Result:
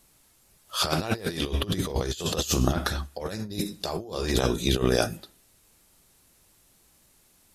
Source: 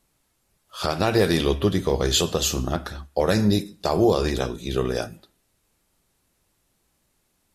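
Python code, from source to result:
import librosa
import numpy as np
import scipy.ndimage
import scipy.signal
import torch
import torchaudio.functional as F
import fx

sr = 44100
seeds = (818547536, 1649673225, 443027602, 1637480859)

y = fx.high_shelf(x, sr, hz=3700.0, db=6.0)
y = fx.over_compress(y, sr, threshold_db=-26.0, ratio=-0.5)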